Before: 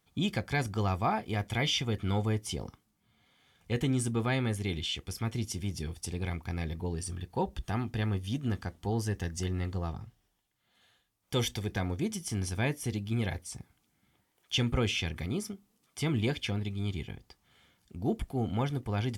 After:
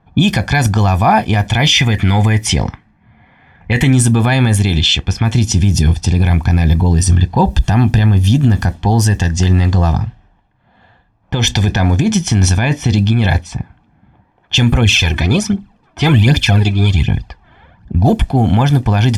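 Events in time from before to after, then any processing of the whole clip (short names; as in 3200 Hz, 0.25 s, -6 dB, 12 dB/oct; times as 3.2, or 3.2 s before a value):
1.72–3.93 bell 2000 Hz +13 dB 0.39 oct
5.48–8.72 low shelf 430 Hz +4.5 dB
9.72–13.41 negative-ratio compressor -33 dBFS
14.81–18.13 phaser 1.3 Hz, delay 3.3 ms, feedback 60%
whole clip: low-pass opened by the level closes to 1100 Hz, open at -27 dBFS; comb 1.2 ms, depth 49%; maximiser +23 dB; gain -1 dB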